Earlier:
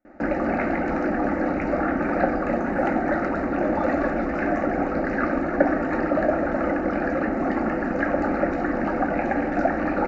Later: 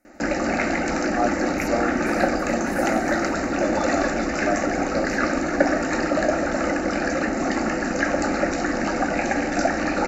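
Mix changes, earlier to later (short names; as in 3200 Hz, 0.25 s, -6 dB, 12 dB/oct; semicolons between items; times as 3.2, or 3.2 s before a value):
speech +9.5 dB; second sound -4.0 dB; master: remove LPF 1600 Hz 12 dB/oct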